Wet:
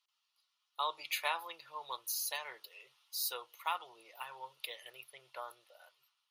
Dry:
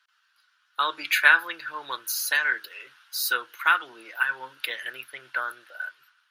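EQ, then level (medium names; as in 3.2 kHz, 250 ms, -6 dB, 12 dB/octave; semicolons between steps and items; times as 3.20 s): dynamic bell 870 Hz, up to +6 dB, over -38 dBFS, Q 1.6; static phaser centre 650 Hz, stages 4; -8.0 dB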